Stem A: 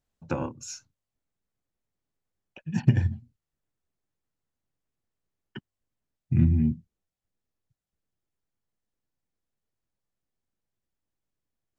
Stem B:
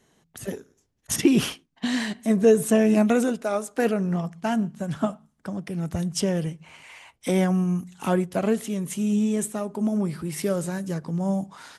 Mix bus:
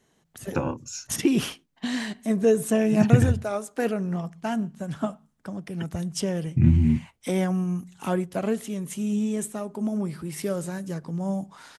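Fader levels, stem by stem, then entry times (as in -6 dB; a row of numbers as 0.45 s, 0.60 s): +3.0 dB, -3.0 dB; 0.25 s, 0.00 s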